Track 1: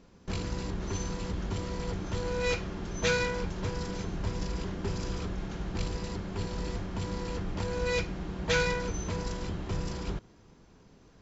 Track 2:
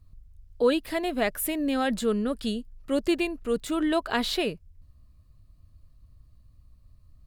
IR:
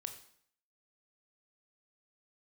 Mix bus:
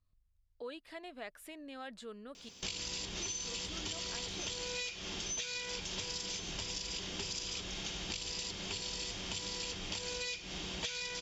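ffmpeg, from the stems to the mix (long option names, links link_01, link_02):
-filter_complex "[0:a]highshelf=frequency=2200:width_type=q:width=1.5:gain=13,bandreject=frequency=4100:width=10,acompressor=threshold=-28dB:ratio=6,adelay=2350,volume=2dB[link_01];[1:a]lowpass=6400,acompressor=threshold=-31dB:ratio=1.5,volume=-12.5dB,asplit=3[link_02][link_03][link_04];[link_02]atrim=end=2.49,asetpts=PTS-STARTPTS,afade=type=out:start_time=2.486:duration=0.004:curve=hsin[link_05];[link_03]atrim=start=2.49:end=3.16,asetpts=PTS-STARTPTS,volume=0[link_06];[link_04]atrim=start=3.16,asetpts=PTS-STARTPTS,afade=type=in:duration=0.004:curve=hsin[link_07];[link_05][link_06][link_07]concat=n=3:v=0:a=1[link_08];[link_01][link_08]amix=inputs=2:normalize=0,lowshelf=frequency=370:gain=-12,acompressor=threshold=-37dB:ratio=6"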